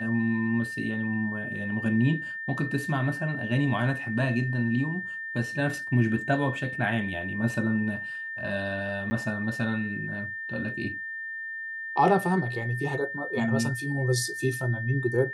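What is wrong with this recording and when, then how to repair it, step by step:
tone 1800 Hz -33 dBFS
9.1–9.11 gap 10 ms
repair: notch 1800 Hz, Q 30; interpolate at 9.1, 10 ms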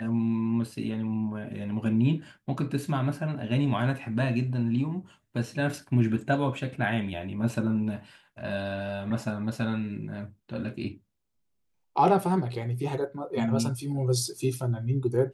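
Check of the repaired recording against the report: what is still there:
none

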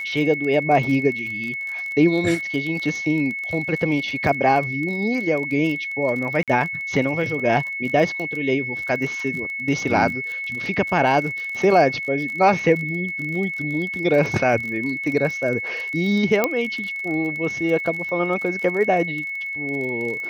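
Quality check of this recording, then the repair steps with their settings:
crackle 32/s -28 dBFS
tone 2200 Hz -26 dBFS
6.43–6.48 gap 47 ms
16.44 pop -5 dBFS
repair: de-click; notch 2200 Hz, Q 30; interpolate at 6.43, 47 ms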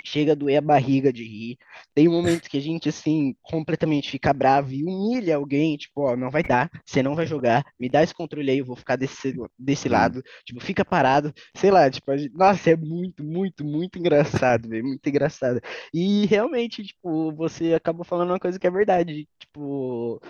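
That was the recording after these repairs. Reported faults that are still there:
16.44 pop

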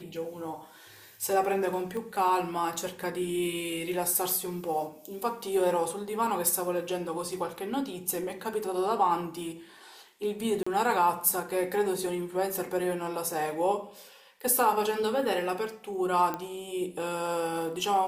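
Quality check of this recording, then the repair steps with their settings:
1.97 pop -25 dBFS
10.63–10.66 gap 35 ms
16.34 pop -18 dBFS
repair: de-click; interpolate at 10.63, 35 ms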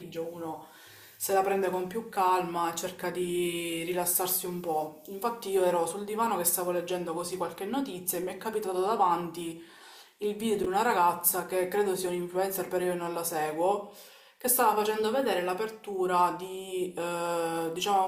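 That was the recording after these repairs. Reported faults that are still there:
none

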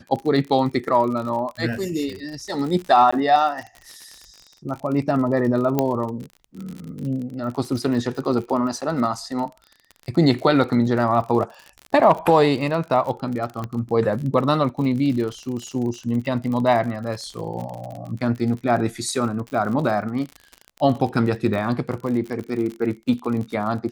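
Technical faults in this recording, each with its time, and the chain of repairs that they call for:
crackle 49/s -29 dBFS
3.11–3.12 gap 15 ms
5.79 pop -6 dBFS
8.81–8.82 gap 6.9 ms
13.64 pop -16 dBFS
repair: de-click; interpolate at 3.11, 15 ms; interpolate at 8.81, 6.9 ms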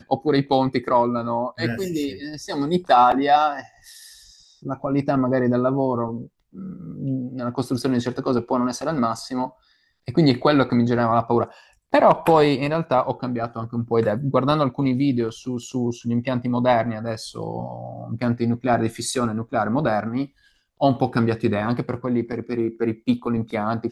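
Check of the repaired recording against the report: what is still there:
13.64 pop

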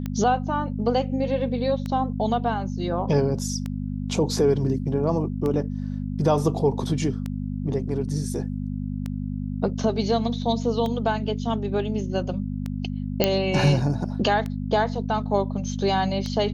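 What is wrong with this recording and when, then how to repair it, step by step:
hum 50 Hz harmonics 5 -29 dBFS
tick 33 1/3 rpm -17 dBFS
13.24 pop -4 dBFS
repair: de-click; de-hum 50 Hz, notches 5

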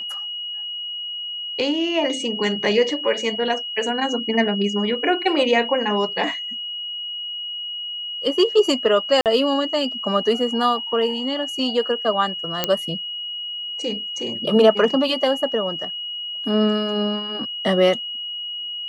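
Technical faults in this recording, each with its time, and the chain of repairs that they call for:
tone 2900 Hz -27 dBFS
9.21–9.26 gap 48 ms
12.64 pop -3 dBFS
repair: de-click; notch 2900 Hz, Q 30; interpolate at 9.21, 48 ms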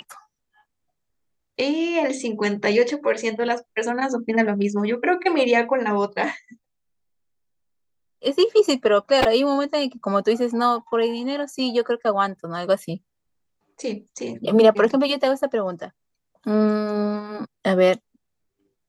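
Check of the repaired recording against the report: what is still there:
none

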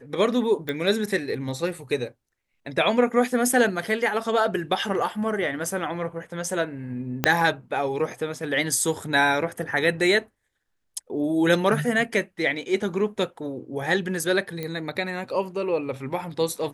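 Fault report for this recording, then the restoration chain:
0.69 pop -15 dBFS
7.24 pop -5 dBFS
14.63 pop -17 dBFS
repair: de-click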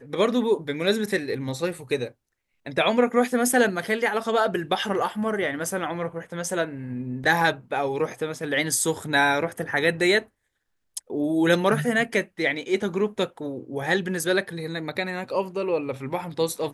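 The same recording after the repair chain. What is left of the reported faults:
0.69 pop
7.24 pop

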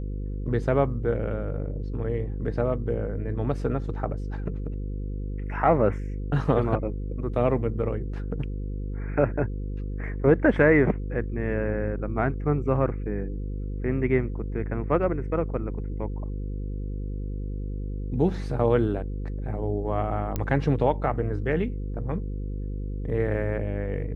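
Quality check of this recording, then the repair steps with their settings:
buzz 50 Hz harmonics 10 -31 dBFS
20.36 pop -14 dBFS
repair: de-click; de-hum 50 Hz, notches 10

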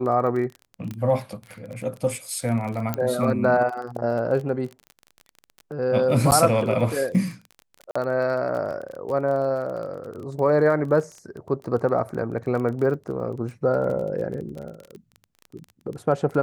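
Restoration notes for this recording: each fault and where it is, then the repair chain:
crackle 23/s -31 dBFS
0.91 pop -20 dBFS
2.94 pop -10 dBFS
6.31–6.32 gap 9.1 ms
7.91–7.96 gap 45 ms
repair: de-click; interpolate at 6.31, 9.1 ms; interpolate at 7.91, 45 ms

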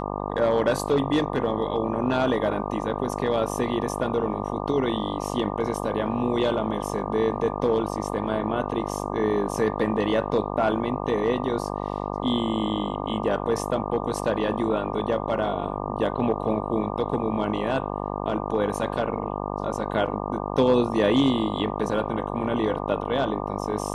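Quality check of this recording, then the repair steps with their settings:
buzz 50 Hz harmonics 24 -30 dBFS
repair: de-hum 50 Hz, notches 24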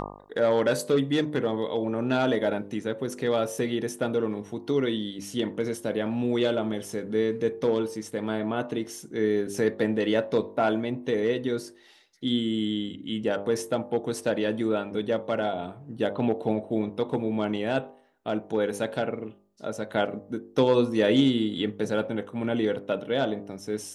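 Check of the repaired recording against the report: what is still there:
none

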